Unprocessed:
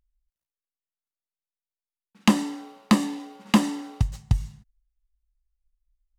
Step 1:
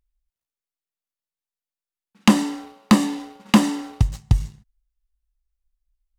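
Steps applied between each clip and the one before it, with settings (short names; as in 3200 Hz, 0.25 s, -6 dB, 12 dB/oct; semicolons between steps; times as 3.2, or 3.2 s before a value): sample leveller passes 1; gain +1.5 dB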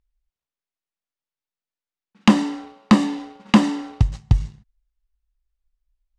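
air absorption 84 m; gain +1 dB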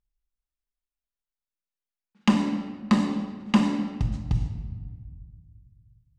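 shoebox room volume 1600 m³, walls mixed, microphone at 1.3 m; gain -9 dB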